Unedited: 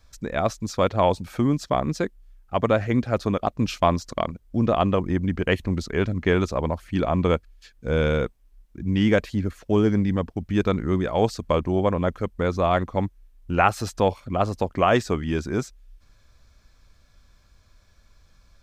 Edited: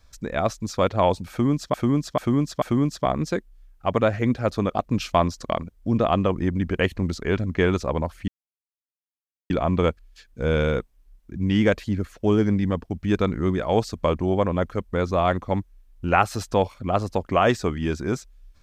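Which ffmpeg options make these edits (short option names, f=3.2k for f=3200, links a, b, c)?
-filter_complex "[0:a]asplit=5[a][b][c][d][e];[a]atrim=end=1.742[f];[b]atrim=start=1.298:end=1.742[g];[c]atrim=start=1.298:end=1.742[h];[d]atrim=start=1.298:end=6.96,asetpts=PTS-STARTPTS,afade=t=out:st=5.658:d=0.004:c=hsin,apad=pad_dur=1.22[i];[e]atrim=start=6.96,asetpts=PTS-STARTPTS,afade=t=in:d=0.004:c=hsin[j];[f][g]acrossfade=d=0.004:c1=hsin:c2=hsin[k];[k][h]acrossfade=d=0.004:c1=hsin:c2=hsin[l];[i][j]concat=n=2:v=0:a=1[m];[l][m]acrossfade=d=0.004:c1=hsin:c2=hsin"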